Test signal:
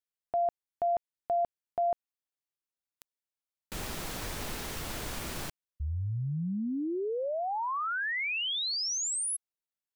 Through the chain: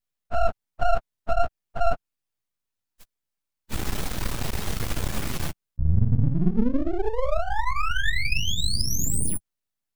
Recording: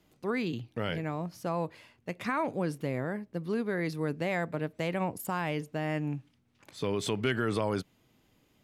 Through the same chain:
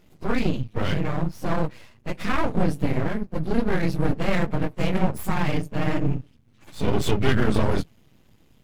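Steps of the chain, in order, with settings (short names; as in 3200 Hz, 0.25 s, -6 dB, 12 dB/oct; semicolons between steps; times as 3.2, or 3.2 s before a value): phase scrambler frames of 50 ms; half-wave rectifier; tone controls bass +8 dB, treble -1 dB; gain +9 dB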